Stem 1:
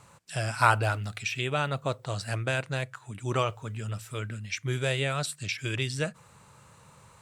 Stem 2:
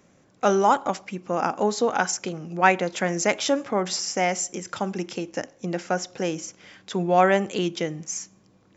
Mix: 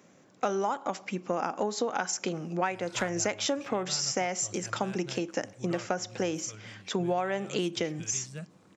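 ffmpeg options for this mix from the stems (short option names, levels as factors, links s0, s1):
-filter_complex "[0:a]equalizer=f=170:t=o:w=0.33:g=13.5,aeval=exprs='0.224*(abs(mod(val(0)/0.224+3,4)-2)-1)':c=same,adelay=2350,volume=0.178[s0];[1:a]highpass=150,volume=1.06[s1];[s0][s1]amix=inputs=2:normalize=0,acompressor=threshold=0.0562:ratio=16"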